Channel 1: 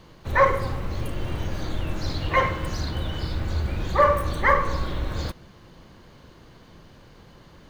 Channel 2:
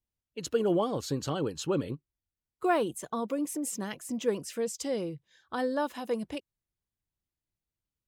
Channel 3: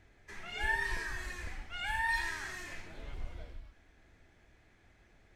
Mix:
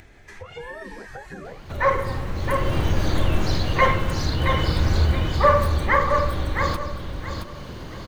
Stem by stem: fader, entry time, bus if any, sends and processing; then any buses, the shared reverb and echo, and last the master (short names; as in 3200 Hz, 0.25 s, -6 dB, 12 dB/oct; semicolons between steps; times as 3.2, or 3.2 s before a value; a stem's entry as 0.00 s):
-4.0 dB, 1.45 s, no send, echo send -5.5 dB, AGC gain up to 12 dB
-3.0 dB, 0.05 s, no send, no echo send, spectrum mirrored in octaves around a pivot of 470 Hz; compressor, threshold -38 dBFS, peak gain reduction 15.5 dB
-11.5 dB, 0.00 s, no send, no echo send, dry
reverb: off
echo: feedback echo 0.671 s, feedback 24%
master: upward compressor, threshold -29 dBFS